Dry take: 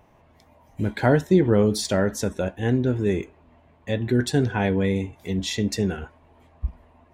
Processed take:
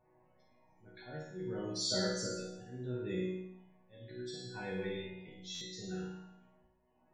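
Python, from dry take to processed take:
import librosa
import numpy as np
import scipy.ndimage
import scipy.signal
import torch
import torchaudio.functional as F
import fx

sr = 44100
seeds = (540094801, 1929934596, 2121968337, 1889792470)

y = fx.dynamic_eq(x, sr, hz=5400.0, q=0.79, threshold_db=-45.0, ratio=4.0, max_db=7)
y = fx.auto_swell(y, sr, attack_ms=516.0)
y = fx.resonator_bank(y, sr, root=47, chord='major', decay_s=0.82)
y = fx.spec_topn(y, sr, count=64)
y = fx.room_flutter(y, sr, wall_m=9.3, rt60_s=0.8)
y = fx.buffer_glitch(y, sr, at_s=(5.54,), block=512, repeats=5)
y = F.gain(torch.from_numpy(y), 6.5).numpy()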